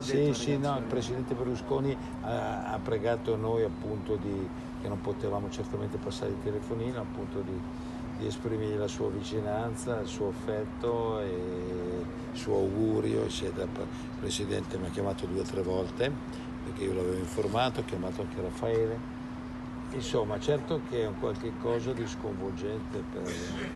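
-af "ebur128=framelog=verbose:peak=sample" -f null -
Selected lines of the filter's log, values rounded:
Integrated loudness:
  I:         -33.0 LUFS
  Threshold: -43.0 LUFS
Loudness range:
  LRA:         2.8 LU
  Threshold: -53.1 LUFS
  LRA low:   -34.7 LUFS
  LRA high:  -31.9 LUFS
Sample peak:
  Peak:      -14.8 dBFS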